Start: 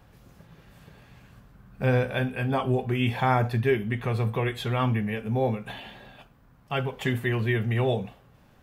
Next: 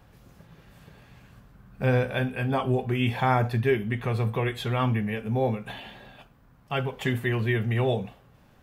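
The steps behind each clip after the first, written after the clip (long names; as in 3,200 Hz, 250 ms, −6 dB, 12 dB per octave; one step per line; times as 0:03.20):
no processing that can be heard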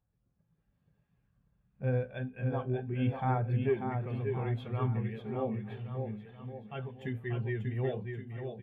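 bouncing-ball delay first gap 590 ms, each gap 0.9×, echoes 5
every bin expanded away from the loudest bin 1.5 to 1
level −9 dB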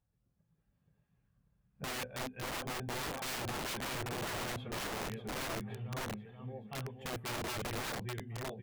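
wrap-around overflow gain 32.5 dB
level −1.5 dB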